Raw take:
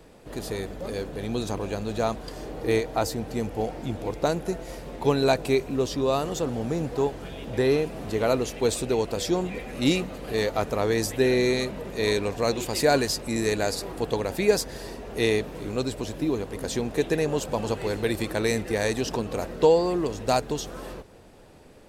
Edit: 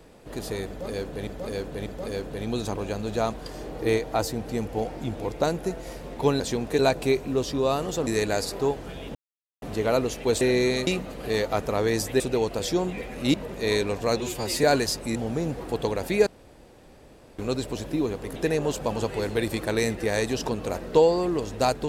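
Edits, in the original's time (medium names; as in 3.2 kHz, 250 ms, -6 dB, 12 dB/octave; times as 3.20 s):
0.68–1.27 s: loop, 3 plays
6.50–6.95 s: swap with 13.37–13.89 s
7.51–7.98 s: mute
8.77–9.91 s: swap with 11.24–11.70 s
12.56–12.85 s: stretch 1.5×
14.55–15.67 s: room tone
16.64–17.03 s: move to 5.22 s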